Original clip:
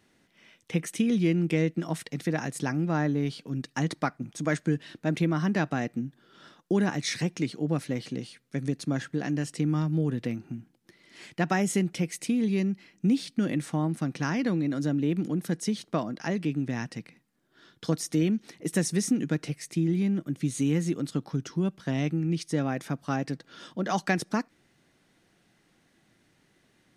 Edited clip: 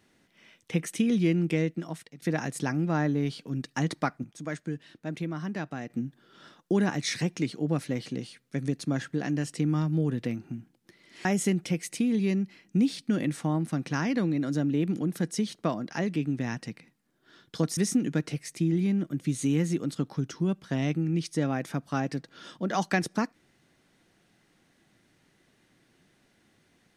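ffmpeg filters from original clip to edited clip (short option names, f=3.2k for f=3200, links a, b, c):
-filter_complex "[0:a]asplit=6[a][b][c][d][e][f];[a]atrim=end=2.22,asetpts=PTS-STARTPTS,afade=t=out:st=1.22:d=1:c=qsin:silence=0.0891251[g];[b]atrim=start=2.22:end=4.242,asetpts=PTS-STARTPTS,afade=t=in:d=0.004:c=hsin:silence=0.0891251[h];[c]atrim=start=4.238:end=5.902,asetpts=PTS-STARTPTS,volume=-7.5dB[i];[d]atrim=start=5.898:end=11.252[j];[e]atrim=start=11.538:end=18.062[k];[f]atrim=start=18.928[l];[g][h]concat=n=2:v=0:a=1[m];[m][i]acrossfade=d=0.004:c1=hsin:c2=hsin[n];[n][j]acrossfade=d=0.004:c1=hsin:c2=hsin[o];[o][k]acrossfade=d=0.004:c1=hsin:c2=hsin[p];[p][l]acrossfade=d=0.004:c1=hsin:c2=hsin"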